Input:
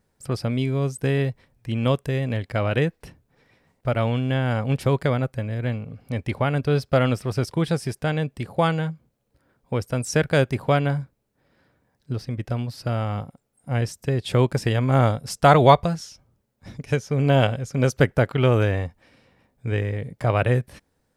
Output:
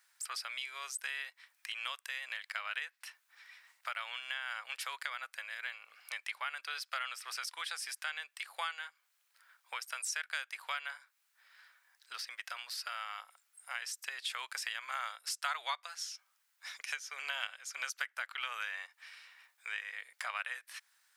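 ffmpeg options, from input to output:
-af "highpass=f=1300:w=0.5412,highpass=f=1300:w=1.3066,acompressor=threshold=0.00398:ratio=3,volume=2.37"

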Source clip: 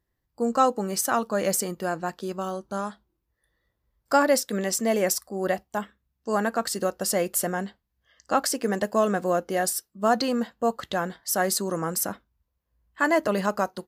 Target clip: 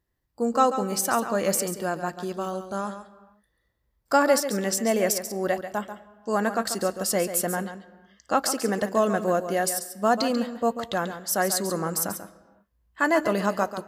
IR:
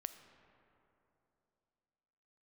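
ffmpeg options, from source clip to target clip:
-filter_complex "[0:a]asplit=2[s0][s1];[1:a]atrim=start_sample=2205,afade=t=out:st=0.43:d=0.01,atrim=end_sample=19404,adelay=139[s2];[s1][s2]afir=irnorm=-1:irlink=0,volume=0.473[s3];[s0][s3]amix=inputs=2:normalize=0"

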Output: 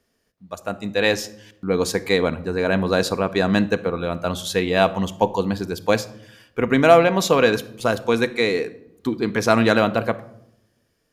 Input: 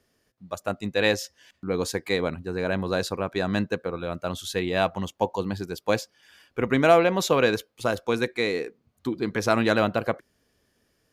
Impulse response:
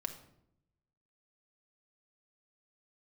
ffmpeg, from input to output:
-filter_complex "[0:a]dynaudnorm=f=120:g=17:m=2.37,asplit=2[s0][s1];[1:a]atrim=start_sample=2205[s2];[s1][s2]afir=irnorm=-1:irlink=0,volume=0.841[s3];[s0][s3]amix=inputs=2:normalize=0,volume=0.562"

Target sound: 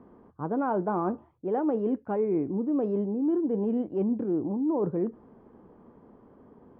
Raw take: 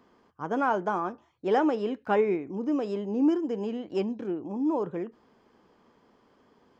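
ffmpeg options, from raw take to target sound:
-af "lowpass=1100,lowshelf=f=450:g=8.5,areverse,acompressor=threshold=0.0398:ratio=10,areverse,volume=1.58"

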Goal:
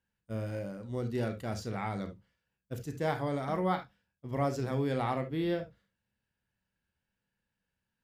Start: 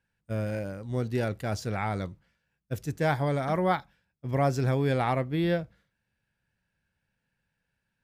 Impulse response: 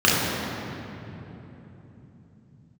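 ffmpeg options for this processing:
-filter_complex "[0:a]asplit=2[s0][s1];[1:a]atrim=start_sample=2205,atrim=end_sample=3528[s2];[s1][s2]afir=irnorm=-1:irlink=0,volume=0.0668[s3];[s0][s3]amix=inputs=2:normalize=0,volume=0.473"

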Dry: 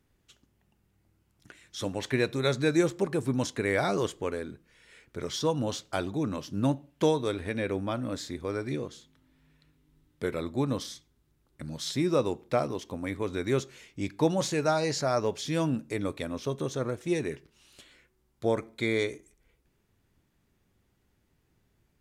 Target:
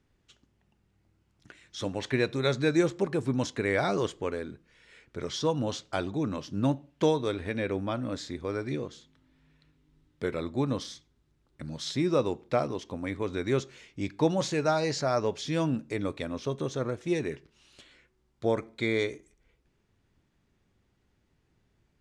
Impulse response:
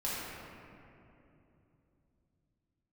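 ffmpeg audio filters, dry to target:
-af "lowpass=6800"

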